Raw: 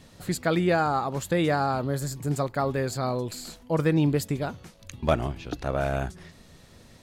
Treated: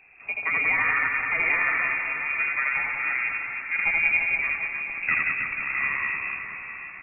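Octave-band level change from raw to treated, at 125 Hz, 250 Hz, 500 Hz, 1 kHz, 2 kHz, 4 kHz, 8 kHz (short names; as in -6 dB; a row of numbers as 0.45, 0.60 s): under -20 dB, -20.0 dB, -18.0 dB, -3.5 dB, +15.0 dB, under -10 dB, under -40 dB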